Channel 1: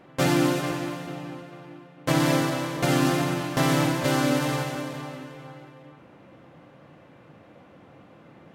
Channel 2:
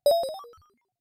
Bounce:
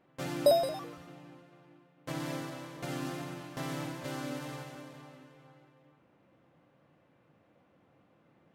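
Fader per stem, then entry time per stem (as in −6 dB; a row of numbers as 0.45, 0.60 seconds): −15.5, −2.5 decibels; 0.00, 0.40 seconds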